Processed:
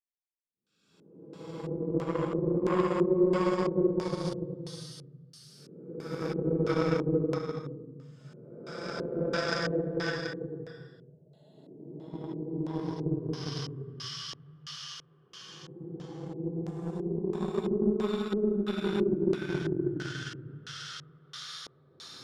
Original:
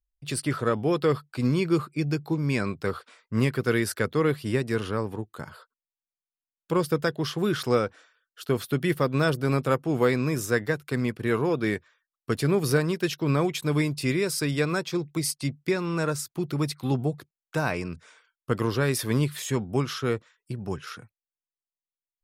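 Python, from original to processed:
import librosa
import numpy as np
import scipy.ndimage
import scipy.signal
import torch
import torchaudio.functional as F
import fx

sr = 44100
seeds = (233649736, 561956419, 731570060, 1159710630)

y = fx.paulstretch(x, sr, seeds[0], factor=22.0, window_s=0.1, from_s=6.63)
y = fx.cheby_harmonics(y, sr, harmonics=(7,), levels_db=(-22,), full_scale_db=-8.0)
y = fx.filter_lfo_lowpass(y, sr, shape='square', hz=1.5, low_hz=390.0, high_hz=6000.0, q=1.6)
y = y * librosa.db_to_amplitude(-5.0)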